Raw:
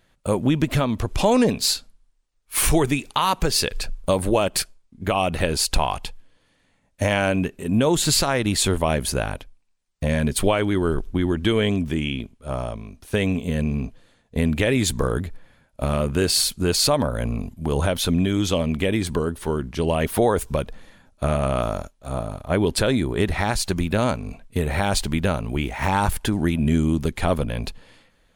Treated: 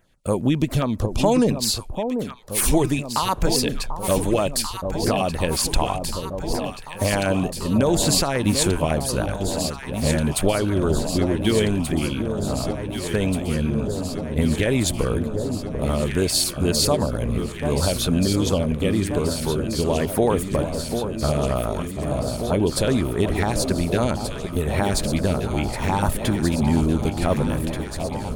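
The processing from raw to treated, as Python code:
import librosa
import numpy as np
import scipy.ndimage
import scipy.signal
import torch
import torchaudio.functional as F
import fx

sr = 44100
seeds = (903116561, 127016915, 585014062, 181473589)

y = fx.filter_lfo_notch(x, sr, shape='saw_down', hz=7.3, low_hz=730.0, high_hz=4500.0, q=1.0)
y = fx.echo_alternate(y, sr, ms=741, hz=970.0, feedback_pct=85, wet_db=-7)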